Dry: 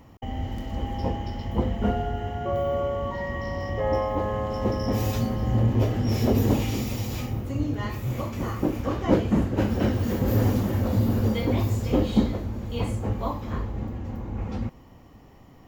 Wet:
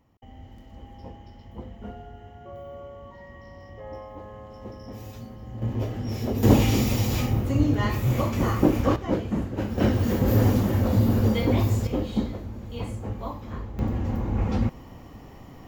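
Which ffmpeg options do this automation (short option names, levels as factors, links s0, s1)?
-af "asetnsamples=n=441:p=0,asendcmd='5.62 volume volume -6dB;6.43 volume volume 5.5dB;8.96 volume volume -5dB;9.78 volume volume 2dB;11.87 volume volume -5dB;13.79 volume volume 6dB',volume=0.188"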